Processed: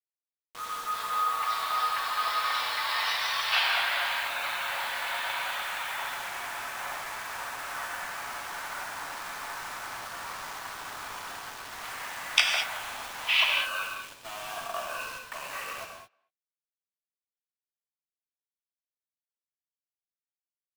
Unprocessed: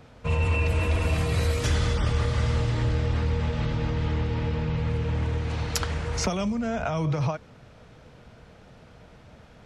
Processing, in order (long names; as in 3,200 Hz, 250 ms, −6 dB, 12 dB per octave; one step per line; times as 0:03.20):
stylus tracing distortion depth 0.02 ms
Bessel high-pass filter 2,600 Hz, order 8
dynamic equaliser 8,100 Hz, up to +4 dB, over −52 dBFS, Q 1.3
automatic gain control gain up to 7 dB
change of speed 0.465×
bit reduction 7 bits
far-end echo of a speakerphone 230 ms, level −28 dB
reverb whose tail is shaped and stops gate 240 ms flat, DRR 1.5 dB